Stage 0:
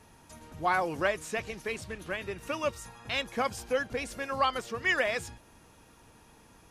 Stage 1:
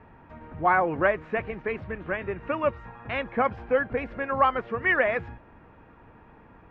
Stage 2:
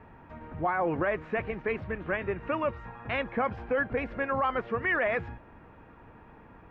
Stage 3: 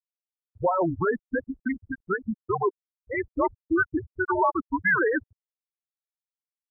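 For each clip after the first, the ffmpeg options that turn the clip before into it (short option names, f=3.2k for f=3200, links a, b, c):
-af "lowpass=f=2.1k:w=0.5412,lowpass=f=2.1k:w=1.3066,volume=6dB"
-af "alimiter=limit=-19.5dB:level=0:latency=1:release=18"
-af "afreqshift=-180,afftfilt=real='re*gte(hypot(re,im),0.141)':imag='im*gte(hypot(re,im),0.141)':win_size=1024:overlap=0.75,highpass=f=280:p=1,volume=7dB"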